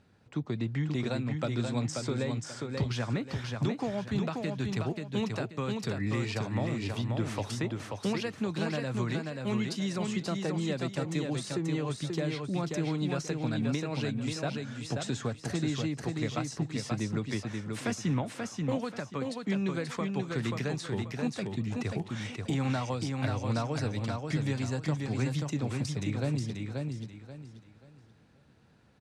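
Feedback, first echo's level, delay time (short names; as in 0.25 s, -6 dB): 29%, -4.0 dB, 0.534 s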